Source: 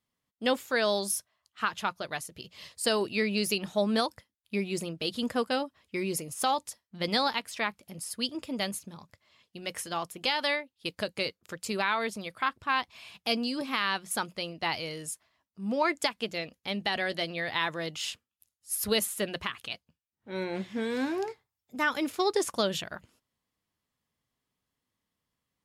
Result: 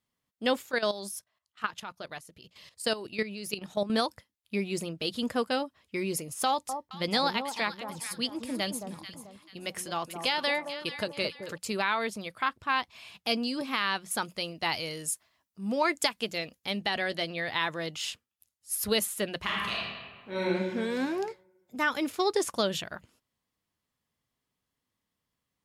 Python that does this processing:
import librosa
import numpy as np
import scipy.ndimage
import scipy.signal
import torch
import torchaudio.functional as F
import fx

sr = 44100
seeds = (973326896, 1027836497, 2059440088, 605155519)

y = fx.level_steps(x, sr, step_db=13, at=(0.62, 3.9))
y = fx.echo_alternate(y, sr, ms=219, hz=1100.0, feedback_pct=57, wet_db=-6.5, at=(6.47, 11.58))
y = fx.high_shelf(y, sr, hz=5700.0, db=7.5, at=(14.22, 16.8))
y = fx.reverb_throw(y, sr, start_s=19.4, length_s=1.08, rt60_s=1.6, drr_db=-5.5)